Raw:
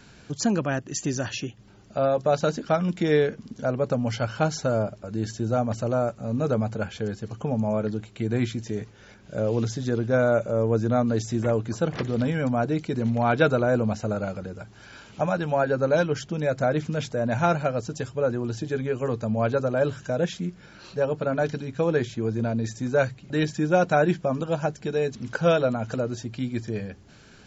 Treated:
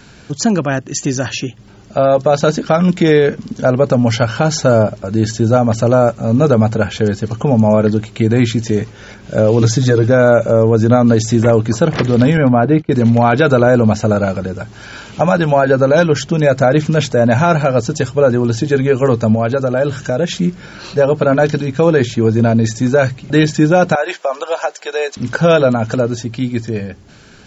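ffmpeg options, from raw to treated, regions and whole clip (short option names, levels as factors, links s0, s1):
-filter_complex "[0:a]asettb=1/sr,asplit=3[s0][s1][s2];[s0]atrim=end=9.614[s3];[s1]atrim=start=9.61:end=10.09,asetpts=PTS-STARTPTS,afade=t=in:d=0.004:c=qsin,afade=t=out:st=0.476:d=0.004:c=qsin,bandreject=f=2900:w=7.5,aecho=1:1:6.5:0.83,atrim=end_sample=21168[s4];[s2]atrim=start=10.086[s5];[s3][s4]acrossfade=d=0.004:c1=hsin:c2=qsin[s6];[s6][s5]acrossfade=d=0.004:c1=qsin:c2=hsin,asettb=1/sr,asplit=3[s7][s8][s9];[s7]atrim=end=12.374[s10];[s8]atrim=start=12.37:end=12.92,asetpts=PTS-STARTPTS,afade=t=in:d=0.004:c=qsin,afade=t=out:st=0.546:d=0.004:c=qsin,lowpass=2400,agate=range=0.0891:threshold=0.02:ratio=16:release=100:detection=peak,acompressor=mode=upward:threshold=0.02:ratio=2.5:attack=3.2:release=140:knee=2.83:detection=peak[s11];[s9]atrim=start=12.916[s12];[s10][s11]acrossfade=d=0.004:c1=hsin:c2=qsin[s13];[s13][s12]acrossfade=d=0.004:c1=qsin:c2=hsin,asettb=1/sr,asplit=3[s14][s15][s16];[s14]atrim=end=19.354[s17];[s15]atrim=start=19.35:end=20.31,asetpts=PTS-STARTPTS,afade=t=in:d=0.004:c=qsin,afade=t=out:st=0.956:d=0.004:c=qsin,bandreject=f=1000:w=16,acompressor=threshold=0.0316:ratio=2:attack=3.2:release=140:knee=1:detection=peak[s18];[s16]atrim=start=20.306[s19];[s17][s18]acrossfade=d=0.004:c1=hsin:c2=qsin[s20];[s20][s19]acrossfade=d=0.004:c1=qsin:c2=hsin,asettb=1/sr,asplit=3[s21][s22][s23];[s21]atrim=end=23.954[s24];[s22]atrim=start=23.95:end=25.17,asetpts=PTS-STARTPTS,afade=t=in:d=0.004:c=qsin,afade=t=out:st=1.216:d=0.004:c=qsin,highpass=f=550:w=0.5412,highpass=f=550:w=1.3066,acompressor=threshold=0.0501:ratio=4:attack=3.2:release=140:knee=1:detection=peak[s25];[s23]atrim=start=25.166[s26];[s24][s25]acrossfade=d=0.004:c1=hsin:c2=qsin[s27];[s27][s26]acrossfade=d=0.004:c1=qsin:c2=hsin,dynaudnorm=f=380:g=11:m=1.88,alimiter=level_in=3.35:limit=0.891:release=50:level=0:latency=1,volume=0.891"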